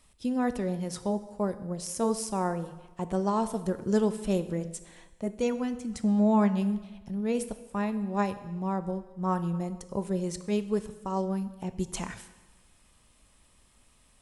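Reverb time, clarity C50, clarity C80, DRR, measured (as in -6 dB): 1.2 s, 13.0 dB, 15.0 dB, 11.0 dB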